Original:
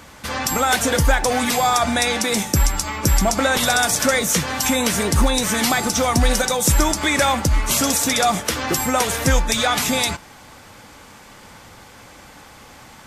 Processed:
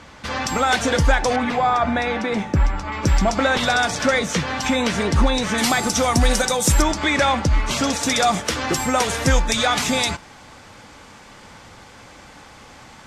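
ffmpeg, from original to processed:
ffmpeg -i in.wav -af "asetnsamples=nb_out_samples=441:pad=0,asendcmd='1.36 lowpass f 2100;2.92 lowpass f 4300;5.58 lowpass f 10000;6.82 lowpass f 4700;8.03 lowpass f 7800',lowpass=5500" out.wav

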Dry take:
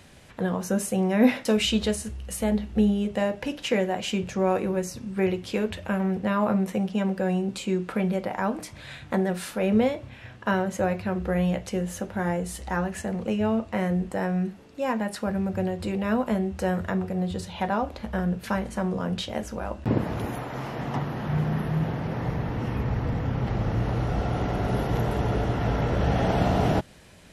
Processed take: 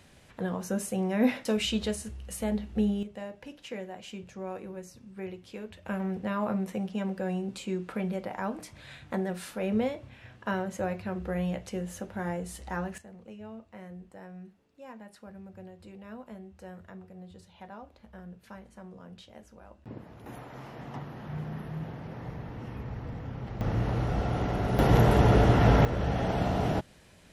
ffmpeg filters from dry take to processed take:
ffmpeg -i in.wav -af "asetnsamples=nb_out_samples=441:pad=0,asendcmd='3.03 volume volume -14.5dB;5.86 volume volume -6.5dB;12.98 volume volume -19.5dB;20.26 volume volume -11dB;23.61 volume volume -2.5dB;24.79 volume volume 5dB;25.85 volume volume -5.5dB',volume=-5.5dB" out.wav

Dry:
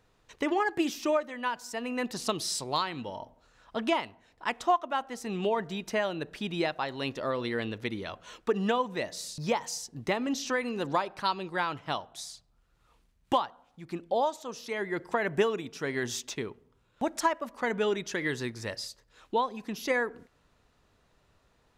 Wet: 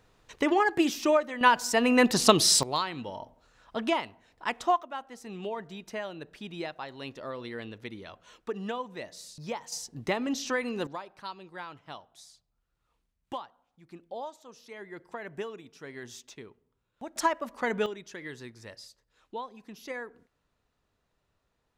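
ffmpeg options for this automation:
ffmpeg -i in.wav -af "asetnsamples=nb_out_samples=441:pad=0,asendcmd='1.41 volume volume 11dB;2.63 volume volume 0dB;4.83 volume volume -7dB;9.72 volume volume 0dB;10.87 volume volume -11dB;17.16 volume volume 0.5dB;17.86 volume volume -10dB',volume=3.5dB" out.wav

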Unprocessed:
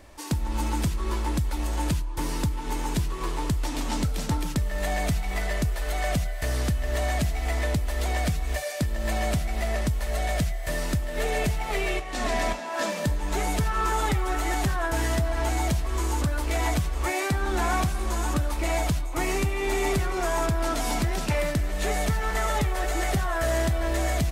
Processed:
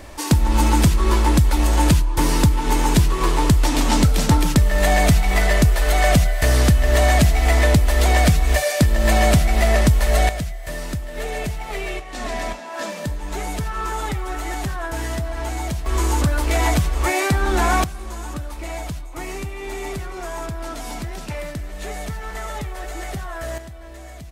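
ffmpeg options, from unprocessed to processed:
ffmpeg -i in.wav -af "asetnsamples=nb_out_samples=441:pad=0,asendcmd='10.29 volume volume -0.5dB;15.86 volume volume 7dB;17.84 volume volume -4dB;23.58 volume volume -13dB',volume=11dB" out.wav

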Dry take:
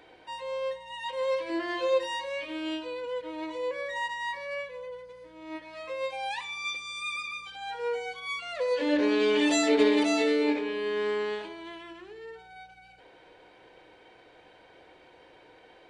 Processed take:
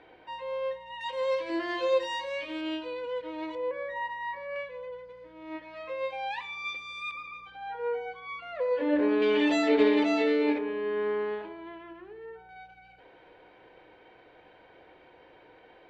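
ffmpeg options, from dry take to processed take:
ffmpeg -i in.wav -af "asetnsamples=nb_out_samples=441:pad=0,asendcmd='1.01 lowpass f 6600;2.61 lowpass f 4100;3.55 lowpass f 1800;4.56 lowpass f 3000;7.11 lowpass f 1700;9.22 lowpass f 3100;10.58 lowpass f 1700;12.49 lowpass f 2900',lowpass=2800" out.wav

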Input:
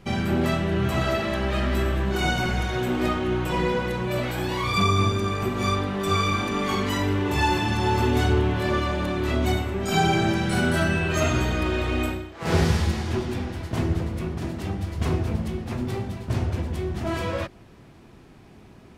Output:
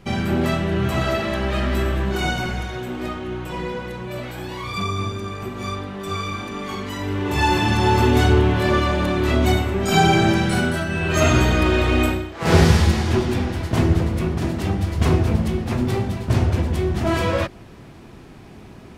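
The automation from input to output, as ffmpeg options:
ffmpeg -i in.wav -af "volume=22.5dB,afade=type=out:start_time=2.05:duration=0.79:silence=0.473151,afade=type=in:start_time=6.97:duration=0.7:silence=0.334965,afade=type=out:start_time=10.39:duration=0.47:silence=0.354813,afade=type=in:start_time=10.86:duration=0.45:silence=0.298538" out.wav

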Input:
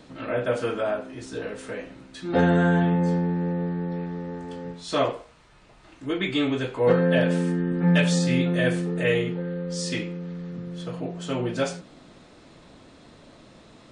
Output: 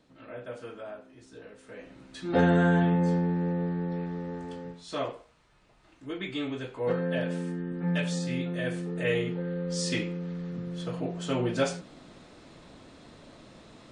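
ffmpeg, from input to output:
ffmpeg -i in.wav -af "volume=5.5dB,afade=type=in:start_time=1.66:duration=0.51:silence=0.237137,afade=type=out:start_time=4.46:duration=0.4:silence=0.473151,afade=type=in:start_time=8.66:duration=1.11:silence=0.398107" out.wav

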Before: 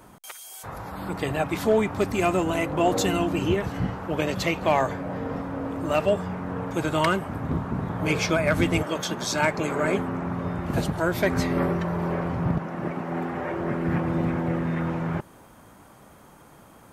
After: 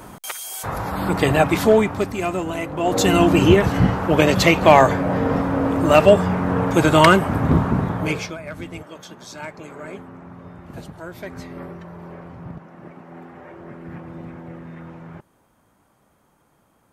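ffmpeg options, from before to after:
ffmpeg -i in.wav -af "volume=21.5dB,afade=type=out:start_time=1.38:duration=0.76:silence=0.281838,afade=type=in:start_time=2.82:duration=0.45:silence=0.266073,afade=type=out:start_time=7.61:duration=0.56:silence=0.251189,afade=type=out:start_time=8.17:duration=0.18:silence=0.334965" out.wav

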